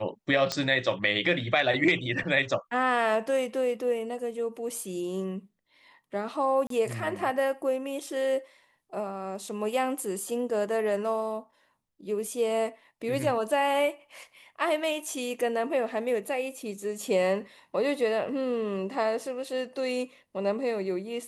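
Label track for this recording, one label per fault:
0.520000	0.520000	pop -14 dBFS
6.670000	6.700000	dropout 33 ms

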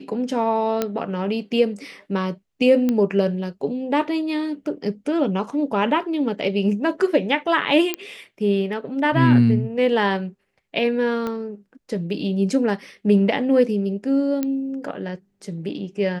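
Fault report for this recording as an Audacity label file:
0.820000	0.820000	pop -8 dBFS
2.890000	2.890000	pop -10 dBFS
7.940000	7.940000	pop -7 dBFS
11.270000	11.270000	pop -15 dBFS
14.430000	14.430000	pop -11 dBFS

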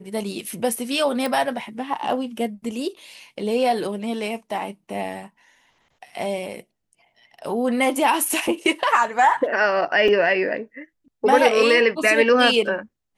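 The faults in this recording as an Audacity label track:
1.260000	1.260000	pop
10.080000	10.080000	dropout 4 ms

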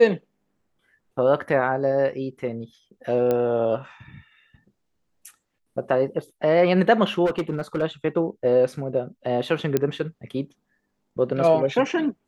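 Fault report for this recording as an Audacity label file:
3.310000	3.310000	pop -12 dBFS
7.250000	7.830000	clipped -19.5 dBFS
9.770000	9.770000	pop -8 dBFS

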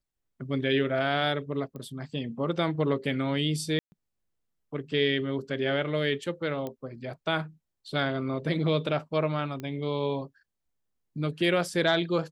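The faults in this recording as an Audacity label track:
1.760000	1.760000	pop -29 dBFS
3.790000	3.920000	dropout 130 ms
6.670000	6.670000	pop -22 dBFS
9.600000	9.600000	pop -23 dBFS

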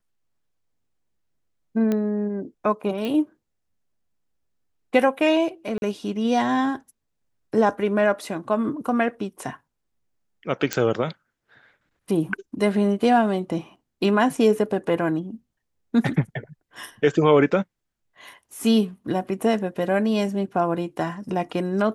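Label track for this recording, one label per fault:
1.920000	1.920000	pop -13 dBFS
3.050000	3.050000	pop -17 dBFS
5.780000	5.820000	dropout 41 ms
10.730000	10.730000	pop -7 dBFS

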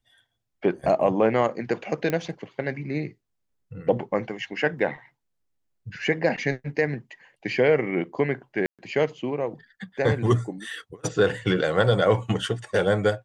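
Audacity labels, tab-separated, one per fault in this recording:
2.100000	2.100000	pop -13 dBFS
4.790000	4.790000	dropout 2 ms
8.660000	8.790000	dropout 127 ms

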